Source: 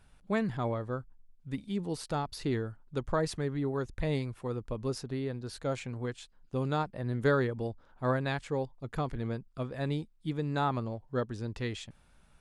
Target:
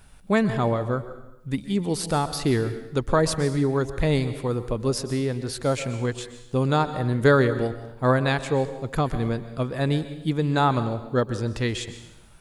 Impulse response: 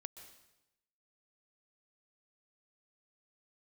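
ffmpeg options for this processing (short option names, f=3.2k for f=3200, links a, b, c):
-filter_complex "[0:a]asplit=2[a][b];[1:a]atrim=start_sample=2205,highshelf=f=6.7k:g=10.5[c];[b][c]afir=irnorm=-1:irlink=0,volume=11dB[d];[a][d]amix=inputs=2:normalize=0"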